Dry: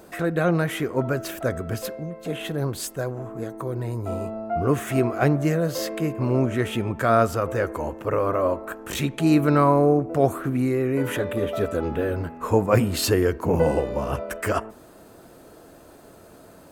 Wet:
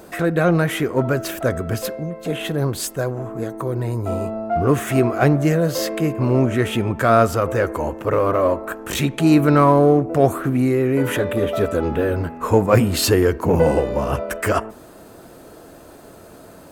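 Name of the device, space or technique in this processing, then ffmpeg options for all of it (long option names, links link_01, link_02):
parallel distortion: -filter_complex "[0:a]asplit=2[link_01][link_02];[link_02]asoftclip=type=hard:threshold=-22dB,volume=-12.5dB[link_03];[link_01][link_03]amix=inputs=2:normalize=0,volume=3.5dB"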